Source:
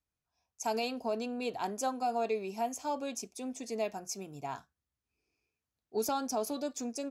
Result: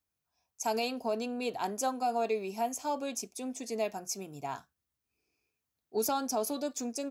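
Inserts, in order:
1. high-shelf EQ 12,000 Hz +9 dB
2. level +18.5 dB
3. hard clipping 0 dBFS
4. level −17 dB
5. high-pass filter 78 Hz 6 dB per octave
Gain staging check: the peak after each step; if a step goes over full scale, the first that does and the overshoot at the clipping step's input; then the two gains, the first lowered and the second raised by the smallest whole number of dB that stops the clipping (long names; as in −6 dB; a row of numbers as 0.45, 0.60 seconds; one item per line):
−20.5, −2.0, −2.0, −19.0, −19.0 dBFS
no step passes full scale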